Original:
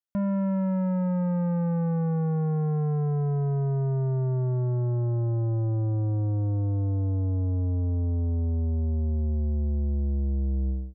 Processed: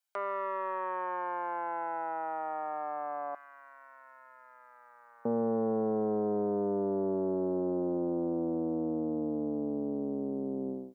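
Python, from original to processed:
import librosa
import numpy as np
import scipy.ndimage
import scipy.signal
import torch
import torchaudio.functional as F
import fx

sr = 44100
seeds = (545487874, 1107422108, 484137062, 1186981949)

y = fx.lower_of_two(x, sr, delay_ms=1.3)
y = fx.highpass(y, sr, hz=fx.steps((0.0, 720.0), (3.35, 1500.0), (5.25, 280.0)), slope=24)
y = F.gain(torch.from_numpy(y), 8.5).numpy()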